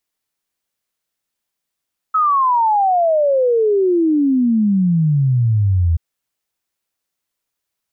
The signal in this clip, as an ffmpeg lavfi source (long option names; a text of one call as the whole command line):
ffmpeg -f lavfi -i "aevalsrc='0.266*clip(min(t,3.83-t)/0.01,0,1)*sin(2*PI*1300*3.83/log(80/1300)*(exp(log(80/1300)*t/3.83)-1))':duration=3.83:sample_rate=44100" out.wav